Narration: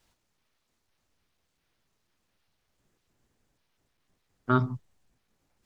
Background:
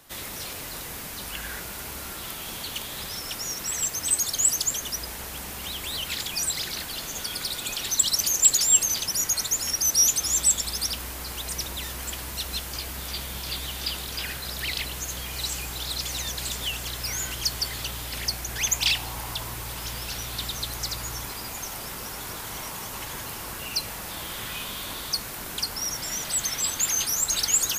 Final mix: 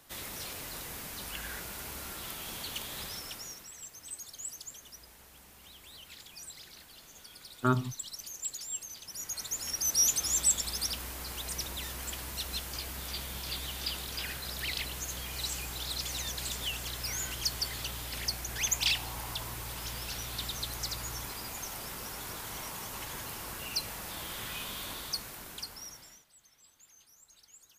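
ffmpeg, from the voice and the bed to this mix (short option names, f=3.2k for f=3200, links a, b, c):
-filter_complex "[0:a]adelay=3150,volume=-3dB[a];[1:a]volume=8.5dB,afade=t=out:st=3.02:d=0.68:silence=0.199526,afade=t=in:st=9.01:d=1.11:silence=0.199526,afade=t=out:st=24.84:d=1.41:silence=0.0334965[b];[a][b]amix=inputs=2:normalize=0"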